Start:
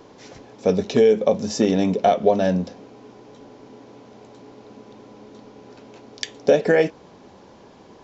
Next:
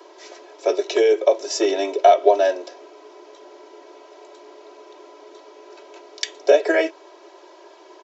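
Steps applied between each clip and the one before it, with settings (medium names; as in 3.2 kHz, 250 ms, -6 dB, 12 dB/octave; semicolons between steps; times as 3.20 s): steep high-pass 340 Hz 72 dB/octave; comb 3.1 ms, depth 85%; trim +1 dB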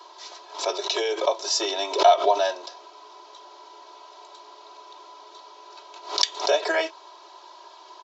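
graphic EQ 250/500/1000/2000/4000 Hz -11/-8/+10/-6/+10 dB; swell ahead of each attack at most 130 dB/s; trim -2.5 dB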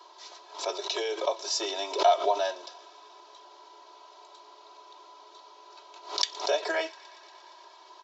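feedback echo behind a high-pass 117 ms, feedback 81%, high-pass 1.6 kHz, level -21 dB; trim -5.5 dB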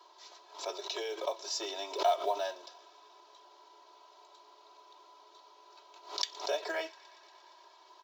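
short-mantissa float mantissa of 4-bit; trim -6.5 dB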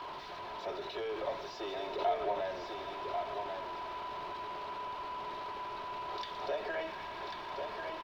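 jump at every zero crossing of -30.5 dBFS; distance through air 350 m; delay 1092 ms -5.5 dB; trim -4.5 dB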